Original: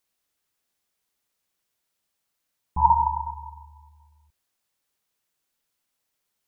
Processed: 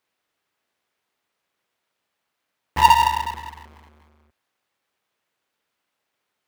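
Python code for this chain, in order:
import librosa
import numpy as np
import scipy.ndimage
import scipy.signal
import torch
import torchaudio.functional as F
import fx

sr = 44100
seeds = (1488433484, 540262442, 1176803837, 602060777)

y = fx.halfwave_hold(x, sr)
y = scipy.signal.sosfilt(scipy.signal.butter(2, 70.0, 'highpass', fs=sr, output='sos'), y)
y = fx.bass_treble(y, sr, bass_db=-6, treble_db=-10)
y = y * librosa.db_to_amplitude(2.5)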